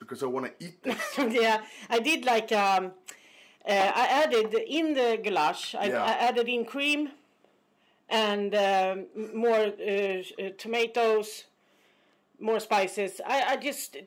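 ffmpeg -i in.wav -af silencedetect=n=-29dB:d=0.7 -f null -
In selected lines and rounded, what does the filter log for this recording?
silence_start: 7.06
silence_end: 8.11 | silence_duration: 1.06
silence_start: 11.27
silence_end: 12.45 | silence_duration: 1.18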